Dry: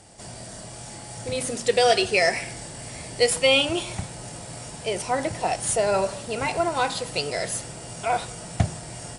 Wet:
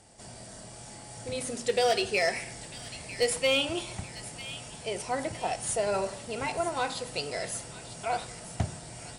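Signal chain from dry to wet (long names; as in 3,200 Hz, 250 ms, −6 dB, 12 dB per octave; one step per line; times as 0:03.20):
hard clipping −12 dBFS, distortion −22 dB
delay with a high-pass on its return 948 ms, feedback 39%, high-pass 1,800 Hz, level −12.5 dB
on a send at −14 dB: convolution reverb RT60 0.65 s, pre-delay 3 ms
on the sum: level −6.5 dB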